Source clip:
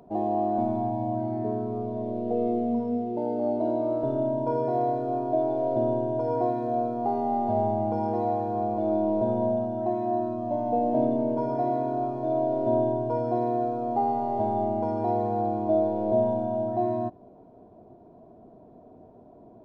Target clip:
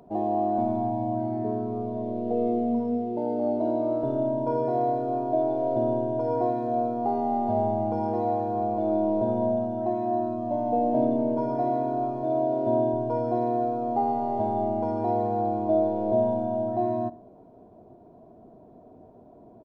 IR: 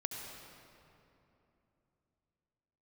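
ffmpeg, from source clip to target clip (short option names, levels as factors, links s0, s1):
-filter_complex "[0:a]asettb=1/sr,asplit=3[s0][s1][s2];[s0]atrim=end=12.224[s3];[s1]atrim=start=12.22:end=12.94,asetpts=PTS-STARTPTS,afade=t=in:d=0.004:c=qsin,afade=t=out:st=0.716:d=0.004:c=qsin,highpass=59[s4];[s2]atrim=start=12.936[s5];[s3][s4]acrossfade=d=0.004:c1=hsin:c2=qsin[s6];[s6][s5]acrossfade=d=0.004:c1=qsin:c2=hsin,asplit=2[s7][s8];[s8]adelay=63,lowpass=f=2000:p=1,volume=0.1,asplit=2[s9][s10];[s10]adelay=63,lowpass=f=2000:p=1,volume=0.52,asplit=2[s11][s12];[s12]adelay=63,lowpass=f=2000:p=1,volume=0.52,asplit=2[s13][s14];[s14]adelay=63,lowpass=f=2000:p=1,volume=0.52[s15];[s7][s9][s11][s13][s15]amix=inputs=5:normalize=0"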